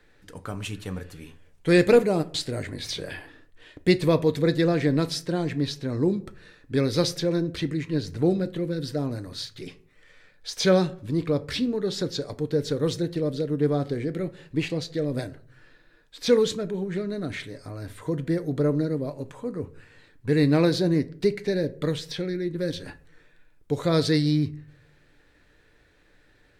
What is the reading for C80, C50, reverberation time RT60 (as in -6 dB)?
23.0 dB, 19.0 dB, 0.55 s